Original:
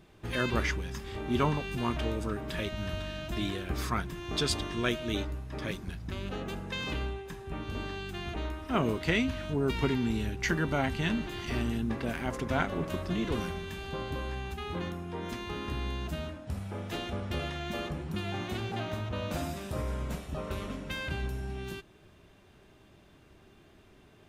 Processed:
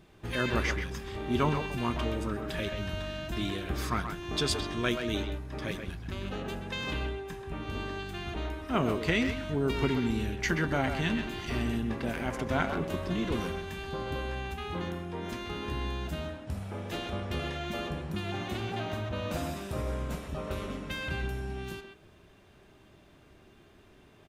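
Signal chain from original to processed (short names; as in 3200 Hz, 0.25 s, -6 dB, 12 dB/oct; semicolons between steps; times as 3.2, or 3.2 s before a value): speakerphone echo 0.13 s, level -6 dB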